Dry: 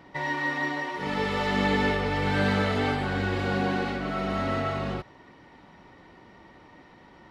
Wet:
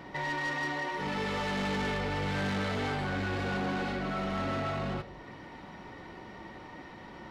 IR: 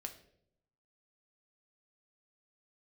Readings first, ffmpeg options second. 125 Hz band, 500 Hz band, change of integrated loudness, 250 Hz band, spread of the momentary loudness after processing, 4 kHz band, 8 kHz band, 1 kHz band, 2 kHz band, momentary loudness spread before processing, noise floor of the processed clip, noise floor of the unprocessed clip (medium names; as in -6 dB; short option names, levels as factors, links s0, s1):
-5.0 dB, -6.0 dB, -5.5 dB, -6.0 dB, 15 LU, -4.5 dB, -1.0 dB, -5.0 dB, -5.0 dB, 6 LU, -48 dBFS, -53 dBFS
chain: -filter_complex "[0:a]asplit=2[s0][s1];[1:a]atrim=start_sample=2205[s2];[s1][s2]afir=irnorm=-1:irlink=0,volume=1.26[s3];[s0][s3]amix=inputs=2:normalize=0,asoftclip=type=tanh:threshold=0.0794,alimiter=level_in=1.68:limit=0.0631:level=0:latency=1:release=344,volume=0.596"